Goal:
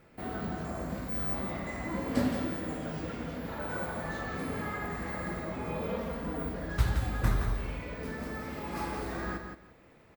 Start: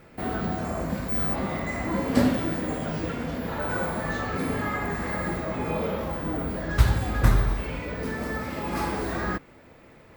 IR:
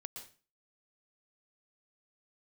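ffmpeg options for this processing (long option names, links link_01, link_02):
-filter_complex "[0:a]asettb=1/sr,asplit=3[link_01][link_02][link_03];[link_01]atrim=end=5.894[link_04];[link_02]atrim=start=5.89:end=6.49,asetpts=PTS-STARTPTS,afade=type=in:duration=0.004:curve=qsin,afade=type=out:start_time=0.596:duration=0.004:curve=qsin,aecho=1:1:4.3:0.72,atrim=end_sample=26460[link_05];[link_03]atrim=start=6.486[link_06];[link_04][link_05]acrossfade=duration=0.004:curve1=hsin:curve2=qsin[link_07];[link_07][link_06]acrossfade=duration=0.004:curve1=qsin:curve2=hsin,asplit=2[link_08][link_09];[link_09]aecho=0:1:170|340|510:0.447|0.0804|0.0145[link_10];[link_08][link_10]amix=inputs=2:normalize=0,volume=-8dB"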